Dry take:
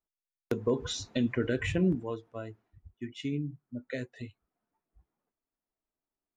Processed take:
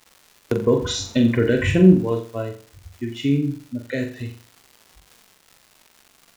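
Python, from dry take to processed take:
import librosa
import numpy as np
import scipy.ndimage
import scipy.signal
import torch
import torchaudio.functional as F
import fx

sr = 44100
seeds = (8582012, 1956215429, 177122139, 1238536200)

y = fx.dmg_crackle(x, sr, seeds[0], per_s=260.0, level_db=-47.0)
y = fx.hpss(y, sr, part='harmonic', gain_db=5)
y = fx.room_flutter(y, sr, wall_m=7.4, rt60_s=0.41)
y = y * librosa.db_to_amplitude(7.5)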